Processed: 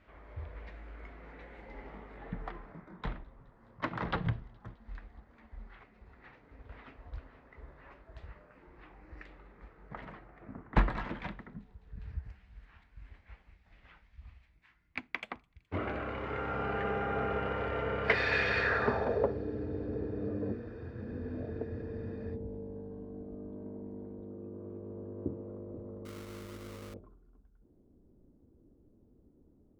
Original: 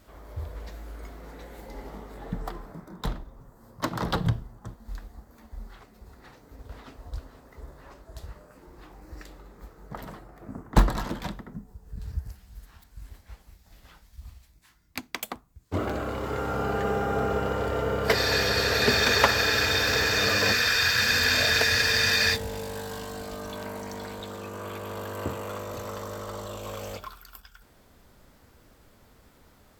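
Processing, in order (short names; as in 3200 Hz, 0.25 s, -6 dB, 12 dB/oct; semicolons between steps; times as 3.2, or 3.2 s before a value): low-pass sweep 2300 Hz -> 330 Hz, 18.57–19.39; thin delay 0.21 s, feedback 77%, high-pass 4200 Hz, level -23.5 dB; 26.05–26.94 sample-rate reducer 1700 Hz, jitter 20%; gain -7.5 dB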